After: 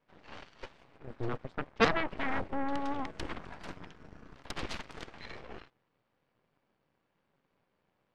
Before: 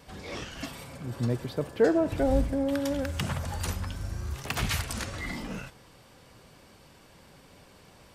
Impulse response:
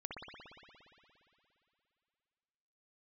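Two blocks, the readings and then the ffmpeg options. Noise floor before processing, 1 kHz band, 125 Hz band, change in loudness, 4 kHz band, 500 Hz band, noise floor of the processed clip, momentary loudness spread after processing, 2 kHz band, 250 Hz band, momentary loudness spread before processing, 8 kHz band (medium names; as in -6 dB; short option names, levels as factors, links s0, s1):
-56 dBFS, +1.0 dB, -13.5 dB, -5.0 dB, -5.5 dB, -9.0 dB, -79 dBFS, 23 LU, -0.5 dB, -9.0 dB, 14 LU, -15.5 dB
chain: -af "highpass=120,lowpass=2400,aeval=exprs='0.266*(cos(1*acos(clip(val(0)/0.266,-1,1)))-cos(1*PI/2))+0.0944*(cos(3*acos(clip(val(0)/0.266,-1,1)))-cos(3*PI/2))+0.106*(cos(6*acos(clip(val(0)/0.266,-1,1)))-cos(6*PI/2))+0.00168*(cos(7*acos(clip(val(0)/0.266,-1,1)))-cos(7*PI/2))+0.119*(cos(8*acos(clip(val(0)/0.266,-1,1)))-cos(8*PI/2))':c=same,volume=0.708"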